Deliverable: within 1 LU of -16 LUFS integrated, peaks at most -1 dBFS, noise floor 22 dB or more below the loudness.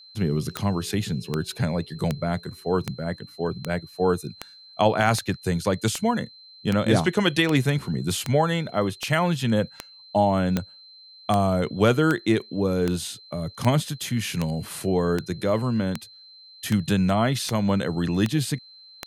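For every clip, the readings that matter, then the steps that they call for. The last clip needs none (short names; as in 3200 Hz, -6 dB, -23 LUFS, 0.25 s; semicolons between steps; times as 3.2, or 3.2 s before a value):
clicks 25; steady tone 4100 Hz; tone level -46 dBFS; loudness -24.5 LUFS; peak -6.5 dBFS; loudness target -16.0 LUFS
-> de-click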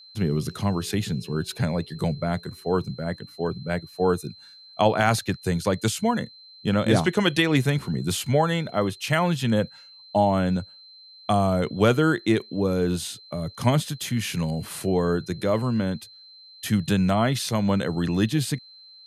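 clicks 0; steady tone 4100 Hz; tone level -46 dBFS
-> notch 4100 Hz, Q 30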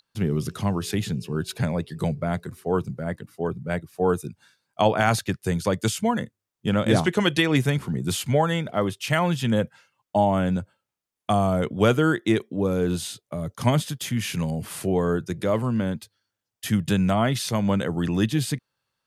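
steady tone none; loudness -24.5 LUFS; peak -7.0 dBFS; loudness target -16.0 LUFS
-> gain +8.5 dB; limiter -1 dBFS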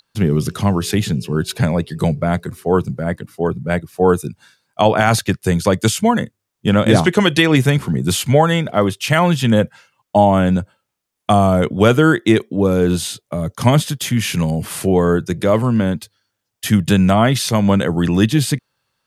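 loudness -16.5 LUFS; peak -1.0 dBFS; noise floor -77 dBFS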